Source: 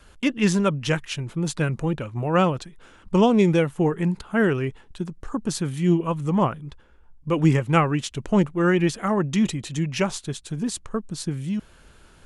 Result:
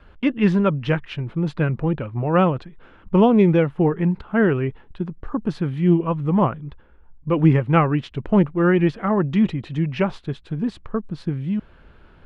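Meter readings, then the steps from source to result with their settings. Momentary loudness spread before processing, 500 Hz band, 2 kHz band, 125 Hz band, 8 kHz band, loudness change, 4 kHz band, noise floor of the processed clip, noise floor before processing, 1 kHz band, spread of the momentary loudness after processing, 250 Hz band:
11 LU, +2.5 dB, 0.0 dB, +3.0 dB, below −20 dB, +2.5 dB, −5.5 dB, −50 dBFS, −52 dBFS, +1.5 dB, 11 LU, +3.0 dB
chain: high-frequency loss of the air 390 metres
level +3.5 dB

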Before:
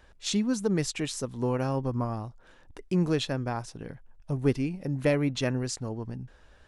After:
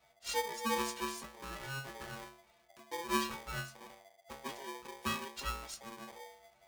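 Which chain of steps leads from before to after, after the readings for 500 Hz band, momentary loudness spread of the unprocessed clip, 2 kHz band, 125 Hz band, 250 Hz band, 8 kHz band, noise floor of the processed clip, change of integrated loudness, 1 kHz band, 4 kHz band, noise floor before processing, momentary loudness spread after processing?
−12.5 dB, 15 LU, −2.0 dB, −20.5 dB, −16.5 dB, −6.0 dB, −68 dBFS, −10.0 dB, 0.0 dB, −5.5 dB, −57 dBFS, 18 LU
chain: stiff-string resonator 94 Hz, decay 0.77 s, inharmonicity 0.03
ring modulator with a square carrier 680 Hz
level +3.5 dB

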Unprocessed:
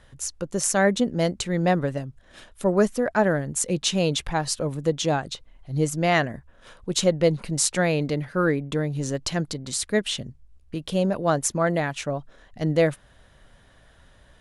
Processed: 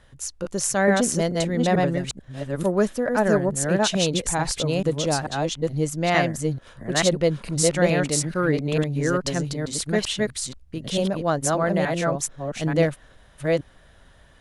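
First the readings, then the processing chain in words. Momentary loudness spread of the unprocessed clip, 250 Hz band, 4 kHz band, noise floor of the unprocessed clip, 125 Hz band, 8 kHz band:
11 LU, +1.5 dB, +1.5 dB, −55 dBFS, +2.0 dB, +1.5 dB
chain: delay that plays each chunk backwards 439 ms, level −1 dB
level −1 dB

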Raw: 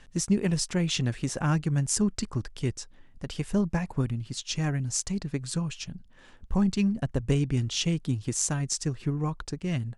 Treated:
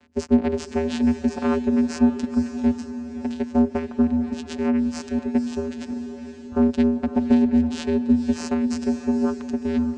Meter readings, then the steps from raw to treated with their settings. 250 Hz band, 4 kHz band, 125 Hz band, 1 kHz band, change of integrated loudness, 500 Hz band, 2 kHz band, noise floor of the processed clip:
+9.5 dB, −6.0 dB, can't be measured, +6.5 dB, +6.0 dB, +9.5 dB, +1.0 dB, −38 dBFS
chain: lower of the sound and its delayed copy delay 3.4 ms
channel vocoder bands 8, square 80.4 Hz
feedback delay with all-pass diffusion 530 ms, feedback 42%, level −9.5 dB
level +8 dB

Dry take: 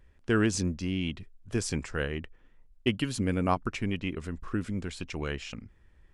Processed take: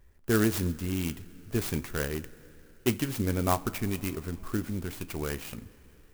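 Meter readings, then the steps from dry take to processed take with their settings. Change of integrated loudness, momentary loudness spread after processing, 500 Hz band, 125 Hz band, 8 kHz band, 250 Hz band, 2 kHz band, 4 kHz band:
+0.5 dB, 11 LU, +1.0 dB, +0.5 dB, +1.0 dB, 0.0 dB, −2.0 dB, −2.0 dB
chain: coupled-rooms reverb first 0.26 s, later 4.1 s, from −18 dB, DRR 11 dB
converter with an unsteady clock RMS 0.066 ms

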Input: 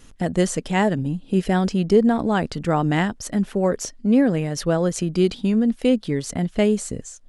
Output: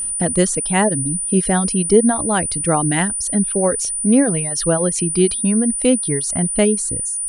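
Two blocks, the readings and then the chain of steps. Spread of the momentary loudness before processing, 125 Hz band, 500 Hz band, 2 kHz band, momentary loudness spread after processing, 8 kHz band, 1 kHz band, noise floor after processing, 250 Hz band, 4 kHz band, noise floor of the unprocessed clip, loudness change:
7 LU, +1.5 dB, +2.5 dB, +3.0 dB, 4 LU, +18.0 dB, +3.0 dB, −23 dBFS, +2.0 dB, +3.0 dB, −47 dBFS, +4.5 dB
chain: reverb reduction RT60 1.2 s
steady tone 9,400 Hz −24 dBFS
level +3.5 dB

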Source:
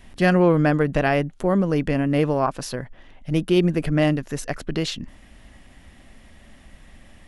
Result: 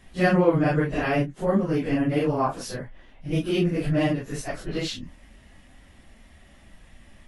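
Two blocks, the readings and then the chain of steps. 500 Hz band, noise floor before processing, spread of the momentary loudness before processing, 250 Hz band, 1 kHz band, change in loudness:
−3.0 dB, −49 dBFS, 14 LU, −3.0 dB, −2.5 dB, −3.0 dB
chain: random phases in long frames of 100 ms
level −3 dB

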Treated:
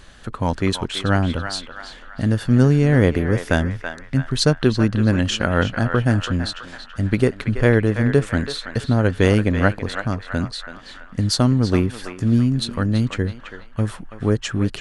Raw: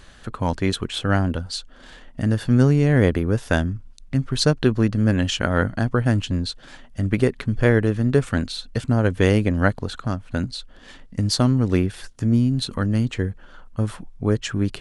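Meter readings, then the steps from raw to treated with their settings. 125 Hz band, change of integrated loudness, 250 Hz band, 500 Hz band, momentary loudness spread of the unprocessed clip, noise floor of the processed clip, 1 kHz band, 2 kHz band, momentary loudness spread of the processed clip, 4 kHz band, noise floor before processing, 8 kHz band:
+1.5 dB, +1.5 dB, +1.5 dB, +1.5 dB, 11 LU, −40 dBFS, +2.5 dB, +2.5 dB, 12 LU, +2.0 dB, −46 dBFS, +1.5 dB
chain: feedback echo with a band-pass in the loop 330 ms, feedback 54%, band-pass 1,500 Hz, level −6 dB
level +1.5 dB

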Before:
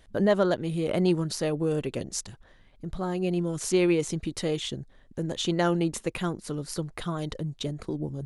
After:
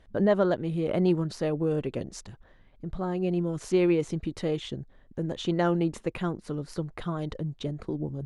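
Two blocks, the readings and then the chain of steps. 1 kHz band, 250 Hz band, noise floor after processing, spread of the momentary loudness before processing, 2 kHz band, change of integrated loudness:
−1.0 dB, 0.0 dB, −58 dBFS, 10 LU, −3.0 dB, −0.5 dB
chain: low-pass filter 1,900 Hz 6 dB per octave

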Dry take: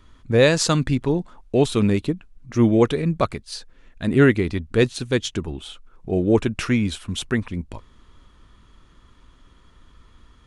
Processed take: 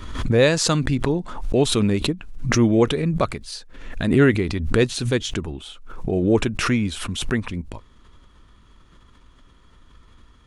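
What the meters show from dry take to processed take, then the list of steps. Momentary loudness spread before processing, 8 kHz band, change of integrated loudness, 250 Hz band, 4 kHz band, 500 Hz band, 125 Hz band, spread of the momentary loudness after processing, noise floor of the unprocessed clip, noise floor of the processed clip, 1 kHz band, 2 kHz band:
16 LU, +2.5 dB, 0.0 dB, 0.0 dB, +2.5 dB, −0.5 dB, +0.5 dB, 16 LU, −54 dBFS, −52 dBFS, +0.5 dB, +0.5 dB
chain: background raised ahead of every attack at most 57 dB per second
level −1 dB

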